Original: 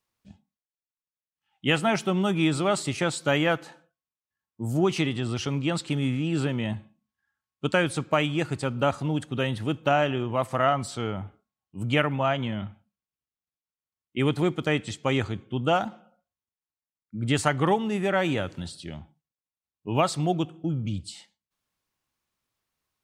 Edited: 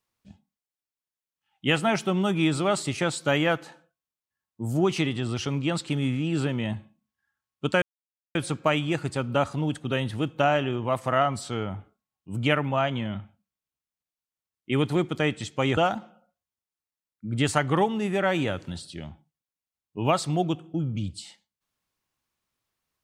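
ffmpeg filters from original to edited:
ffmpeg -i in.wav -filter_complex "[0:a]asplit=3[link_01][link_02][link_03];[link_01]atrim=end=7.82,asetpts=PTS-STARTPTS,afade=type=out:start_time=7.816:duration=0.004:curve=hsin,apad=pad_dur=0.53[link_04];[link_02]atrim=start=7.82:end=15.242,asetpts=PTS-STARTPTS,afade=type=in:duration=0.004:curve=hsin[link_05];[link_03]atrim=start=15.668[link_06];[link_04][link_05]concat=n=2:v=0:a=1[link_07];[link_07][link_06]acrossfade=duration=0.004:curve1=hsin:curve2=hsin" out.wav

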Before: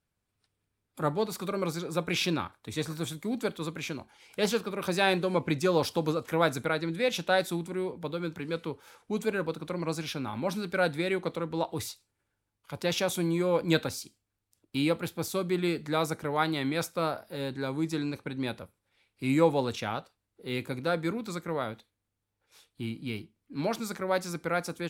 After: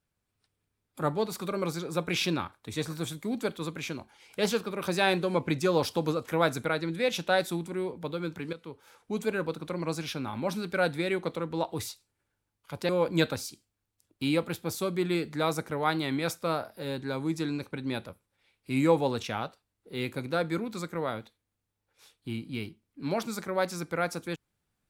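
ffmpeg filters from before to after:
ffmpeg -i in.wav -filter_complex "[0:a]asplit=3[link_01][link_02][link_03];[link_01]atrim=end=8.53,asetpts=PTS-STARTPTS,afade=type=out:start_time=8.526:duration=0.004:curve=hsin:silence=0.211349[link_04];[link_02]atrim=start=8.53:end=12.892,asetpts=PTS-STARTPTS,afade=type=in:duration=0.89:curve=qsin:silence=0.211349[link_05];[link_03]atrim=start=13.418[link_06];[link_04][link_05]concat=n=2:v=0:a=1[link_07];[link_07][link_06]acrossfade=duration=0.004:curve1=hsin:curve2=hsin" out.wav

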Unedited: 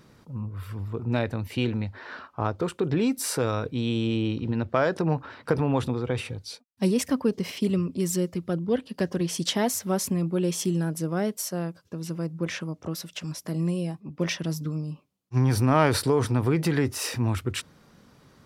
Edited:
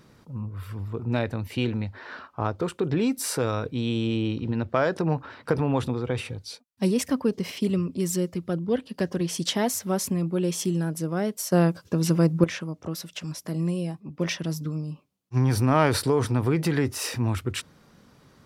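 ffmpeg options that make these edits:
ffmpeg -i in.wav -filter_complex "[0:a]asplit=3[link_01][link_02][link_03];[link_01]atrim=end=11.522[link_04];[link_02]atrim=start=11.518:end=12.442,asetpts=PTS-STARTPTS,volume=10.5dB[link_05];[link_03]atrim=start=12.438[link_06];[link_04][link_05]acrossfade=duration=0.004:curve1=hsin:curve2=hsin[link_07];[link_07][link_06]acrossfade=duration=0.004:curve1=hsin:curve2=hsin" out.wav

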